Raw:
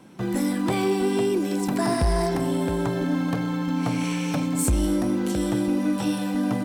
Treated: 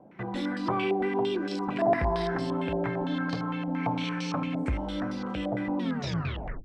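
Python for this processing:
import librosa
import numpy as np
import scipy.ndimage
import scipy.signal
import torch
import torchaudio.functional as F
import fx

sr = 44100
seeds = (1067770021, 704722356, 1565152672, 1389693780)

y = fx.tape_stop_end(x, sr, length_s=0.86)
y = fx.hum_notches(y, sr, base_hz=50, count=7)
y = fx.filter_held_lowpass(y, sr, hz=8.8, low_hz=680.0, high_hz=4700.0)
y = y * librosa.db_to_amplitude(-6.0)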